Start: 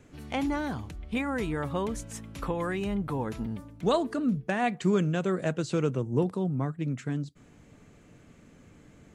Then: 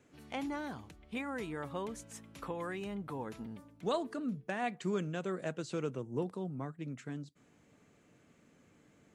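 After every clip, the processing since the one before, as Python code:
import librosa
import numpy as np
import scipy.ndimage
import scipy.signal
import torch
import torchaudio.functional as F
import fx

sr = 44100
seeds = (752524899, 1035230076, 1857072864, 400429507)

y = fx.highpass(x, sr, hz=210.0, slope=6)
y = F.gain(torch.from_numpy(y), -7.5).numpy()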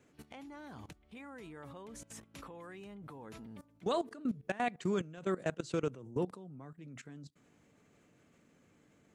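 y = fx.level_steps(x, sr, step_db=18)
y = F.gain(torch.from_numpy(y), 5.0).numpy()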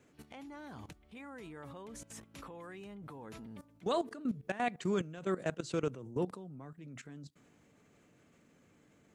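y = fx.transient(x, sr, attack_db=-2, sustain_db=2)
y = F.gain(torch.from_numpy(y), 1.0).numpy()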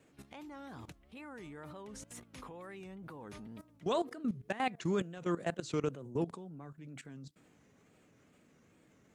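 y = fx.wow_flutter(x, sr, seeds[0], rate_hz=2.1, depth_cents=140.0)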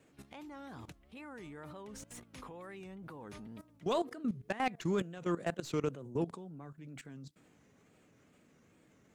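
y = fx.tracing_dist(x, sr, depth_ms=0.032)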